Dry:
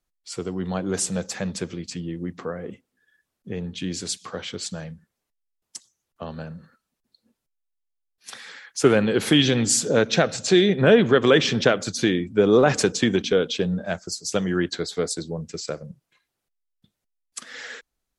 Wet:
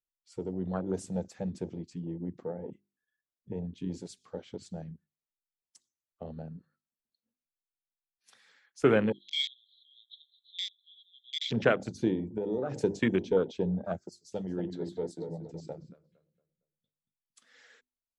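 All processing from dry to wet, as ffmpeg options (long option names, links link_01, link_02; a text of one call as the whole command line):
ffmpeg -i in.wav -filter_complex "[0:a]asettb=1/sr,asplit=3[link_01][link_02][link_03];[link_01]atrim=end=9.124[link_04];[link_02]atrim=start=9.12:end=11.51,asetpts=PTS-STARTPTS,afade=type=in:duration=0.004:curve=qsin,afade=type=out:start_time=2.386:duration=0.004:curve=qsin,asuperpass=centerf=3600:order=12:qfactor=4.3,aecho=1:1:518:0.141,atrim=end_sample=105399[link_05];[link_03]atrim=start=11.506[link_06];[link_04][link_05]acrossfade=duration=0.004:curve1=hsin:curve2=qsin[link_07];[link_07][link_06]acrossfade=duration=0.004:curve1=qsin:curve2=hsin,asettb=1/sr,asplit=3[link_08][link_09][link_10];[link_08]atrim=end=12.134[link_11];[link_09]atrim=start=12.13:end=12.84,asetpts=PTS-STARTPTS,afade=type=in:duration=0.004:curve=qsin,afade=type=out:start_time=0.706:duration=0.004:curve=qsin,equalizer=frequency=1000:width_type=o:width=0.39:gain=-12.5,bandreject=frequency=60:width_type=h:width=6,bandreject=frequency=120:width_type=h:width=6,bandreject=frequency=180:width_type=h:width=6,bandreject=frequency=240:width_type=h:width=6,bandreject=frequency=300:width_type=h:width=6,bandreject=frequency=360:width_type=h:width=6,bandreject=frequency=420:width_type=h:width=6,bandreject=frequency=480:width_type=h:width=6,acompressor=threshold=-21dB:ratio=12:attack=3.2:release=140:knee=1:detection=peak[link_12];[link_10]atrim=start=12.836[link_13];[link_11][link_12]acrossfade=duration=0.004:curve1=hsin:curve2=qsin[link_14];[link_14][link_13]acrossfade=duration=0.004:curve1=qsin:curve2=hsin,asettb=1/sr,asplit=3[link_15][link_16][link_17];[link_15]atrim=end=14.094[link_18];[link_16]atrim=start=14.09:end=17.44,asetpts=PTS-STARTPTS,afade=type=in:duration=0.004:curve=qsin,afade=type=out:start_time=3.346:duration=0.004:curve=qsin,equalizer=frequency=3500:width_type=o:width=0.51:gain=4.5,flanger=delay=5.6:depth=3.4:regen=68:speed=1.7:shape=triangular,asplit=2[link_19][link_20];[link_20]adelay=230,lowpass=frequency=1400:poles=1,volume=-5dB,asplit=2[link_21][link_22];[link_22]adelay=230,lowpass=frequency=1400:poles=1,volume=0.38,asplit=2[link_23][link_24];[link_24]adelay=230,lowpass=frequency=1400:poles=1,volume=0.38,asplit=2[link_25][link_26];[link_26]adelay=230,lowpass=frequency=1400:poles=1,volume=0.38,asplit=2[link_27][link_28];[link_28]adelay=230,lowpass=frequency=1400:poles=1,volume=0.38[link_29];[link_19][link_21][link_23][link_25][link_27][link_29]amix=inputs=6:normalize=0,atrim=end_sample=147735[link_30];[link_17]atrim=start=17.436[link_31];[link_18][link_30]acrossfade=duration=0.004:curve1=hsin:curve2=qsin[link_32];[link_32][link_31]acrossfade=duration=0.004:curve1=qsin:curve2=hsin,bandreject=frequency=50:width_type=h:width=6,bandreject=frequency=100:width_type=h:width=6,bandreject=frequency=150:width_type=h:width=6,bandreject=frequency=200:width_type=h:width=6,bandreject=frequency=250:width_type=h:width=6,bandreject=frequency=300:width_type=h:width=6,bandreject=frequency=350:width_type=h:width=6,bandreject=frequency=400:width_type=h:width=6,afwtdn=0.0398,volume=-5.5dB" out.wav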